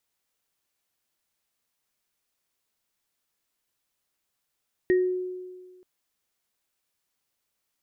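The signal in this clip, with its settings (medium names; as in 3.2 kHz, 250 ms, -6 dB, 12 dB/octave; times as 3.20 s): sine partials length 0.93 s, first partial 366 Hz, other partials 1.87 kHz, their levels -10.5 dB, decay 1.58 s, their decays 0.29 s, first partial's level -16.5 dB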